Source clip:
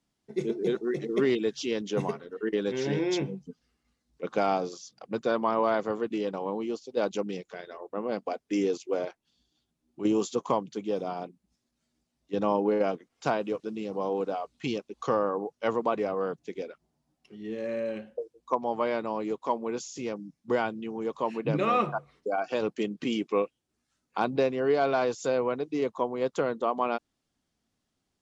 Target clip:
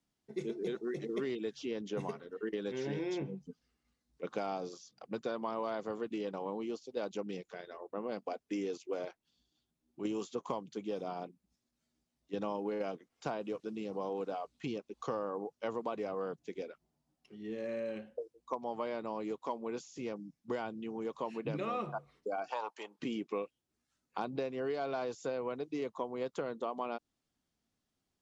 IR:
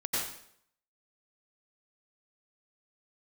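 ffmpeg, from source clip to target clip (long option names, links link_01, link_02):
-filter_complex "[0:a]asettb=1/sr,asplit=3[link_01][link_02][link_03];[link_01]atrim=end=22.504[link_04];[link_02]atrim=start=22.5:end=22.99,asetpts=PTS-STARTPTS,afade=type=in:duration=0.004:curve=qsin,afade=type=out:start_time=0.486:duration=0.004:curve=qsin,highpass=frequency=910:width_type=q:width=8[link_05];[link_03]atrim=start=22.986[link_06];[link_04][link_05]acrossfade=duration=0.004:curve1=hsin:curve2=qsin[link_07];[link_07][link_06]acrossfade=duration=0.004:curve1=qsin:curve2=hsin,acrossover=split=1300|2700[link_08][link_09][link_10];[link_08]acompressor=threshold=-29dB:ratio=4[link_11];[link_09]acompressor=threshold=-48dB:ratio=4[link_12];[link_10]acompressor=threshold=-49dB:ratio=4[link_13];[link_11][link_12][link_13]amix=inputs=3:normalize=0,volume=-5dB"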